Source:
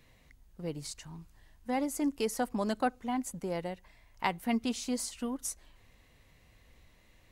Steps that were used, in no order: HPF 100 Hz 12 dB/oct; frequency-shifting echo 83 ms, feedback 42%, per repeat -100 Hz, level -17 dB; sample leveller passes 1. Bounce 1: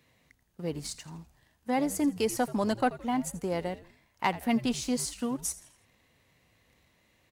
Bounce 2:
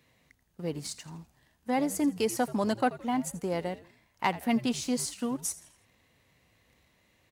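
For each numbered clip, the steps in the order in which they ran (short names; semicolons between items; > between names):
sample leveller > HPF > frequency-shifting echo; sample leveller > frequency-shifting echo > HPF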